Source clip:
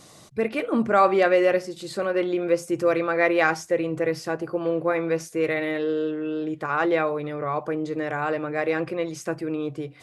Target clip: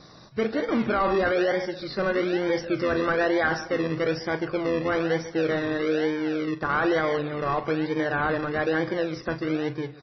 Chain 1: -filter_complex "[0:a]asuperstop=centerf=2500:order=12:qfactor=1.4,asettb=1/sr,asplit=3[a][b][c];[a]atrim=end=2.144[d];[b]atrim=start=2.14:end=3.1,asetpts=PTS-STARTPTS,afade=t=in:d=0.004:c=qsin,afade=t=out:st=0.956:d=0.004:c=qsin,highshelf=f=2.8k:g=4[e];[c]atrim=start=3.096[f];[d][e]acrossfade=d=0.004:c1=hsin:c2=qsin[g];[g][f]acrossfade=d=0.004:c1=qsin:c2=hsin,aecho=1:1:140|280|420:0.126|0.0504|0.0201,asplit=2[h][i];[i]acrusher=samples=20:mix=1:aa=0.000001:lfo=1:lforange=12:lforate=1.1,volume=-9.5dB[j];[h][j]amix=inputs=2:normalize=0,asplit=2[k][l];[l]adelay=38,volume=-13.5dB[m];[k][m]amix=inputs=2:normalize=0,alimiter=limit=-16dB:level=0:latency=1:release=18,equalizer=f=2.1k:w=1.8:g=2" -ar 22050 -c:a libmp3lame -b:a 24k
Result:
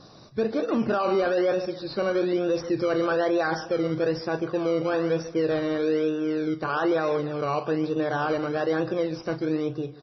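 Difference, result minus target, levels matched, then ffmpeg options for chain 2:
decimation with a swept rate: distortion -15 dB; 2000 Hz band -5.0 dB
-filter_complex "[0:a]asuperstop=centerf=2500:order=12:qfactor=1.4,asettb=1/sr,asplit=3[a][b][c];[a]atrim=end=2.144[d];[b]atrim=start=2.14:end=3.1,asetpts=PTS-STARTPTS,afade=t=in:d=0.004:c=qsin,afade=t=out:st=0.956:d=0.004:c=qsin,highshelf=f=2.8k:g=4[e];[c]atrim=start=3.096[f];[d][e]acrossfade=d=0.004:c1=hsin:c2=qsin[g];[g][f]acrossfade=d=0.004:c1=qsin:c2=hsin,aecho=1:1:140|280|420:0.126|0.0504|0.0201,asplit=2[h][i];[i]acrusher=samples=46:mix=1:aa=0.000001:lfo=1:lforange=27.6:lforate=1.1,volume=-9.5dB[j];[h][j]amix=inputs=2:normalize=0,asplit=2[k][l];[l]adelay=38,volume=-13.5dB[m];[k][m]amix=inputs=2:normalize=0,alimiter=limit=-16dB:level=0:latency=1:release=18,equalizer=f=2.1k:w=1.8:g=10.5" -ar 22050 -c:a libmp3lame -b:a 24k

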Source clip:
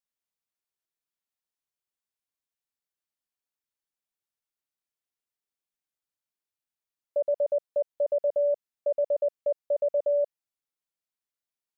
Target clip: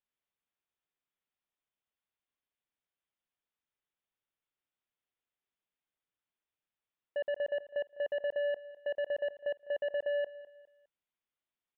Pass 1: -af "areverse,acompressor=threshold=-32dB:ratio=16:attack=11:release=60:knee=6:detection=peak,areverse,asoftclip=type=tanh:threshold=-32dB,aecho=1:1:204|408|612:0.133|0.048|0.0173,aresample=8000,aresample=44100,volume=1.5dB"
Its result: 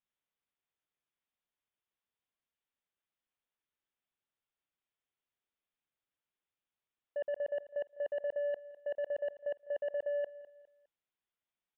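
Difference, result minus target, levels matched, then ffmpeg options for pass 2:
compressor: peak gain reduction +7 dB
-af "areverse,acompressor=threshold=-23.5dB:ratio=16:attack=11:release=60:knee=6:detection=peak,areverse,asoftclip=type=tanh:threshold=-32dB,aecho=1:1:204|408|612:0.133|0.048|0.0173,aresample=8000,aresample=44100,volume=1.5dB"

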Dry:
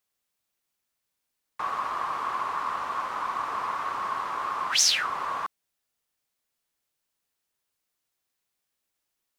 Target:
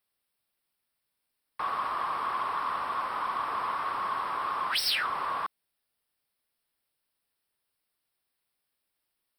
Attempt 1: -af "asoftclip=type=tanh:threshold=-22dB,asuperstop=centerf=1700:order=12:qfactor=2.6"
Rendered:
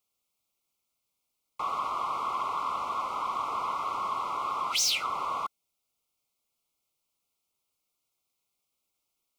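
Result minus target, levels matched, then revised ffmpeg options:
8000 Hz band +12.5 dB
-af "asoftclip=type=tanh:threshold=-22dB,asuperstop=centerf=6700:order=12:qfactor=2.6"

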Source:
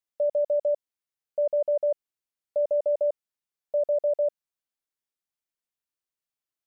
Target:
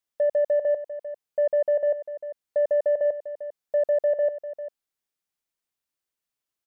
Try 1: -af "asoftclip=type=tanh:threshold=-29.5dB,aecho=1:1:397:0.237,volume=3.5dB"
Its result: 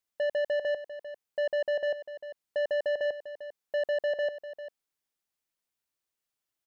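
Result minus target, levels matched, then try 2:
soft clip: distortion +15 dB
-af "asoftclip=type=tanh:threshold=-17.5dB,aecho=1:1:397:0.237,volume=3.5dB"

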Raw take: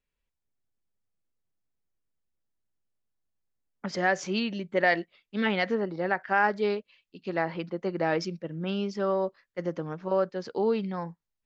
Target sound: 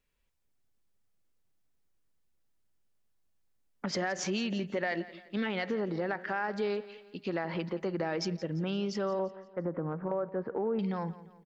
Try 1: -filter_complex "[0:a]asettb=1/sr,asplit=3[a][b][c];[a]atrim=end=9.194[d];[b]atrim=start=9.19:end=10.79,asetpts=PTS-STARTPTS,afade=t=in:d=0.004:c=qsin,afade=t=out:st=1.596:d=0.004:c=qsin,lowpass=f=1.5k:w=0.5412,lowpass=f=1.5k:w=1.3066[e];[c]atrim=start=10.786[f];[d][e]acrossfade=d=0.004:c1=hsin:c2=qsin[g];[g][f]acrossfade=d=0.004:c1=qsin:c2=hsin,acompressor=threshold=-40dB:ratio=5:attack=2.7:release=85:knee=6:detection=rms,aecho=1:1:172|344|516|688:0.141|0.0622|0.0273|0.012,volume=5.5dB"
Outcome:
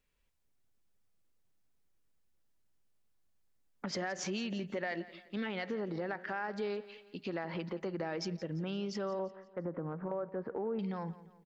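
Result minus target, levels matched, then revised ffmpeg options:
compressor: peak gain reduction +5 dB
-filter_complex "[0:a]asettb=1/sr,asplit=3[a][b][c];[a]atrim=end=9.194[d];[b]atrim=start=9.19:end=10.79,asetpts=PTS-STARTPTS,afade=t=in:d=0.004:c=qsin,afade=t=out:st=1.596:d=0.004:c=qsin,lowpass=f=1.5k:w=0.5412,lowpass=f=1.5k:w=1.3066[e];[c]atrim=start=10.786[f];[d][e]acrossfade=d=0.004:c1=hsin:c2=qsin[g];[g][f]acrossfade=d=0.004:c1=qsin:c2=hsin,acompressor=threshold=-34dB:ratio=5:attack=2.7:release=85:knee=6:detection=rms,aecho=1:1:172|344|516|688:0.141|0.0622|0.0273|0.012,volume=5.5dB"

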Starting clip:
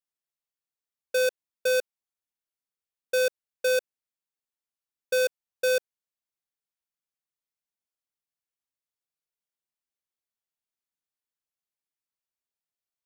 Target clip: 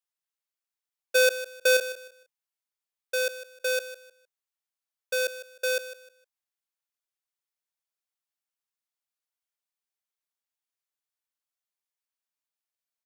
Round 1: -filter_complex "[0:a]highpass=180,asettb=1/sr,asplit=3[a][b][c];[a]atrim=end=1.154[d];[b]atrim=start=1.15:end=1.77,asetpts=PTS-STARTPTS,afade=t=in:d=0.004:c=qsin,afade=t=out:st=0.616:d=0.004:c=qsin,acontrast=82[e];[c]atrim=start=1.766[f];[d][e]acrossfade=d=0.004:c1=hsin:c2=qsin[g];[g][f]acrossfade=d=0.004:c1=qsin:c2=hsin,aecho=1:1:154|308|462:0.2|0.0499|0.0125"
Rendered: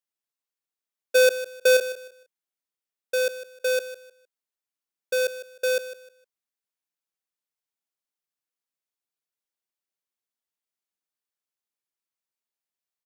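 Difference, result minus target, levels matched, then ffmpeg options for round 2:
250 Hz band +5.5 dB
-filter_complex "[0:a]highpass=610,asettb=1/sr,asplit=3[a][b][c];[a]atrim=end=1.154[d];[b]atrim=start=1.15:end=1.77,asetpts=PTS-STARTPTS,afade=t=in:d=0.004:c=qsin,afade=t=out:st=0.616:d=0.004:c=qsin,acontrast=82[e];[c]atrim=start=1.766[f];[d][e]acrossfade=d=0.004:c1=hsin:c2=qsin[g];[g][f]acrossfade=d=0.004:c1=qsin:c2=hsin,aecho=1:1:154|308|462:0.2|0.0499|0.0125"

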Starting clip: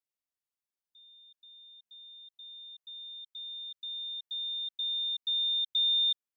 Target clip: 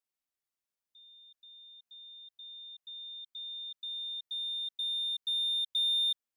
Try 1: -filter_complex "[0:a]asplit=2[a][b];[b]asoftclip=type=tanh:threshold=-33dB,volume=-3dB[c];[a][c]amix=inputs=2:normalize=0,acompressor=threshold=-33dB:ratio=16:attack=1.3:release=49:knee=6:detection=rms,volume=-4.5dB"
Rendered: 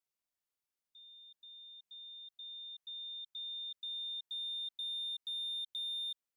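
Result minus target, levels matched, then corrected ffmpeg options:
compressor: peak gain reduction +10.5 dB
-filter_complex "[0:a]asplit=2[a][b];[b]asoftclip=type=tanh:threshold=-33dB,volume=-3dB[c];[a][c]amix=inputs=2:normalize=0,volume=-4.5dB"

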